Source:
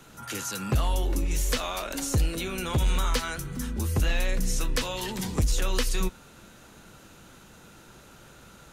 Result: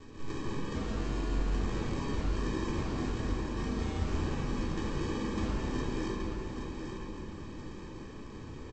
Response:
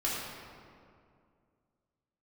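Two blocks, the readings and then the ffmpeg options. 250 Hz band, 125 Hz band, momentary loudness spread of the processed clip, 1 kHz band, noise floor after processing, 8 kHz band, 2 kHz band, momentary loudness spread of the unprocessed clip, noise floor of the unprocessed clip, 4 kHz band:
0.0 dB, -5.5 dB, 11 LU, -5.5 dB, -45 dBFS, -17.5 dB, -8.0 dB, 6 LU, -52 dBFS, -12.0 dB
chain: -filter_complex "[0:a]highpass=57,equalizer=f=140:w=1.5:g=-15,alimiter=limit=-22.5dB:level=0:latency=1:release=351,acompressor=threshold=-43dB:ratio=2,aresample=16000,acrusher=samples=23:mix=1:aa=0.000001,aresample=44100,aecho=1:1:823|1646|2469|3292:0.447|0.152|0.0516|0.0176[a];[1:a]atrim=start_sample=2205[b];[a][b]afir=irnorm=-1:irlink=0"

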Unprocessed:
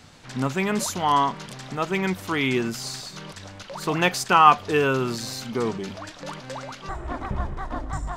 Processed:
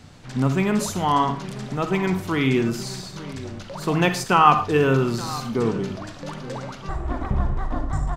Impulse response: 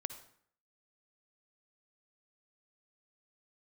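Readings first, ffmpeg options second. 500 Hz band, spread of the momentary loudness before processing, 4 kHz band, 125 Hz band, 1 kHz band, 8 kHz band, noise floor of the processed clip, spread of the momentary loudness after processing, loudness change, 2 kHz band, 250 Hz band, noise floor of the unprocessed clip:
+2.5 dB, 18 LU, -1.5 dB, +6.5 dB, 0.0 dB, -1.5 dB, -40 dBFS, 15 LU, +1.0 dB, -1.0 dB, +4.5 dB, -44 dBFS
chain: -filter_complex "[0:a]lowshelf=f=410:g=8.5,asplit=2[a][b];[b]adelay=874.6,volume=-16dB,highshelf=f=4k:g=-19.7[c];[a][c]amix=inputs=2:normalize=0[d];[1:a]atrim=start_sample=2205,afade=t=out:st=0.25:d=0.01,atrim=end_sample=11466,asetrate=52920,aresample=44100[e];[d][e]afir=irnorm=-1:irlink=0,volume=1.5dB"

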